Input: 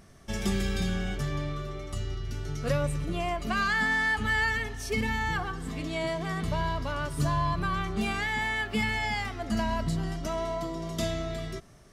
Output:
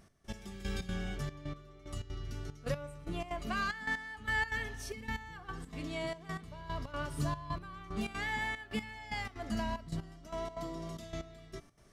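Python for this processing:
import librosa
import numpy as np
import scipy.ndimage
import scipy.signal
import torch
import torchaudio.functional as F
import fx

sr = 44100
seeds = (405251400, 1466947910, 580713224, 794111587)

y = fx.comb_fb(x, sr, f0_hz=290.0, decay_s=0.88, harmonics='all', damping=0.0, mix_pct=60)
y = fx.step_gate(y, sr, bpm=186, pattern='x..x....xx.xxxx', floor_db=-12.0, edge_ms=4.5)
y = y * 10.0 ** (1.0 / 20.0)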